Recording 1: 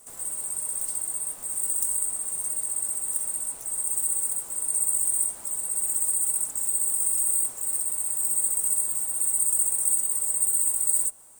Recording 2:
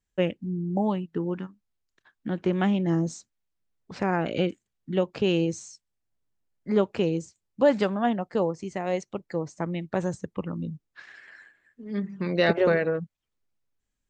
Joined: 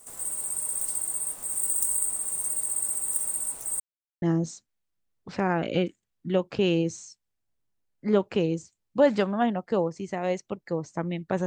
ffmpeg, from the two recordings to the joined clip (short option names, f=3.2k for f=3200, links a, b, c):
-filter_complex "[0:a]apad=whole_dur=11.46,atrim=end=11.46,asplit=2[a][b];[a]atrim=end=3.8,asetpts=PTS-STARTPTS,afade=t=out:st=3.796:d=0.004:c=hsin[c];[b]atrim=start=3.8:end=4.22,asetpts=PTS-STARTPTS,volume=0[d];[1:a]atrim=start=2.85:end=10.09,asetpts=PTS-STARTPTS,afade=t=in:d=0.004:c=hsin[e];[c][d][e]concat=n=3:v=0:a=1"